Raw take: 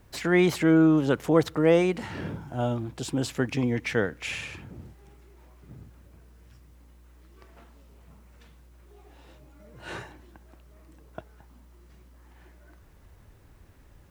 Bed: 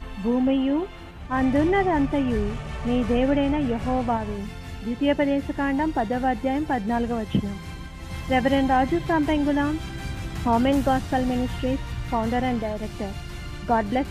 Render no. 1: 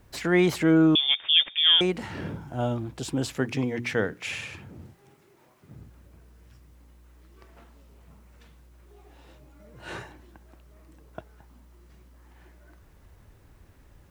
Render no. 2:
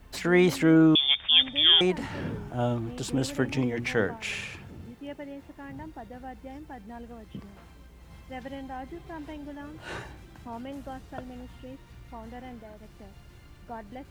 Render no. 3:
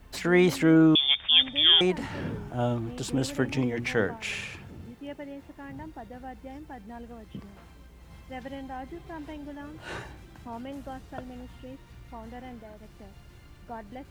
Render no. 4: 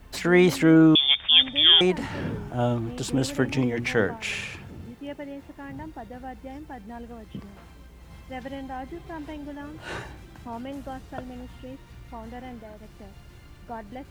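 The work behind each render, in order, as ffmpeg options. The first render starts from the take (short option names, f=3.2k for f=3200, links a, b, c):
-filter_complex "[0:a]asettb=1/sr,asplit=3[a][b][c];[a]atrim=end=0.954[d];[b]atrim=start=0.95:end=1.81,asetpts=PTS-STARTPTS,afade=t=in:d=0.004:c=qsin,afade=t=out:st=0.856:d=0.004:c=qsin,lowpass=f=3.1k:t=q:w=0.5098,lowpass=f=3.1k:t=q:w=0.6013,lowpass=f=3.1k:t=q:w=0.9,lowpass=f=3.1k:t=q:w=2.563,afreqshift=-3700[e];[c]atrim=start=1.806[f];[d][e]acrossfade=d=0.004:c1=hsin:c2=qsin[g];[g][f]acrossfade=d=0.004:c1=qsin:c2=hsin,asettb=1/sr,asplit=3[h][i][j];[h]atrim=end=3.324[k];[i]atrim=start=3.32:end=5.78,asetpts=PTS-STARTPTS,afade=t=in:d=0.004:c=qsin,afade=t=out:st=2.456:d=0.004:c=qsin,bandreject=f=60:t=h:w=6,bandreject=f=120:t=h:w=6,bandreject=f=180:t=h:w=6,bandreject=f=240:t=h:w=6,bandreject=f=300:t=h:w=6,bandreject=f=360:t=h:w=6,bandreject=f=420:t=h:w=6[l];[j]atrim=start=5.776[m];[k][l]acrossfade=d=0.004:c1=hsin:c2=qsin[n];[n][m]acrossfade=d=0.004:c1=qsin:c2=hsin"
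-filter_complex "[1:a]volume=-18.5dB[a];[0:a][a]amix=inputs=2:normalize=0"
-af anull
-af "volume=3dB"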